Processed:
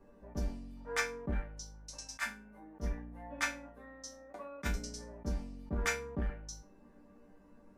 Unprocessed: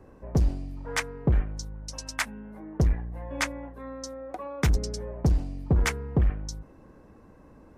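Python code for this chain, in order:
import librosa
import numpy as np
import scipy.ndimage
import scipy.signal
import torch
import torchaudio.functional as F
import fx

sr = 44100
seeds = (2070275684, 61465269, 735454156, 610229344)

y = fx.dynamic_eq(x, sr, hz=1500.0, q=1.9, threshold_db=-48.0, ratio=4.0, max_db=6)
y = fx.resonator_bank(y, sr, root=55, chord='minor', decay_s=0.27)
y = fx.attack_slew(y, sr, db_per_s=420.0)
y = y * 10.0 ** (8.5 / 20.0)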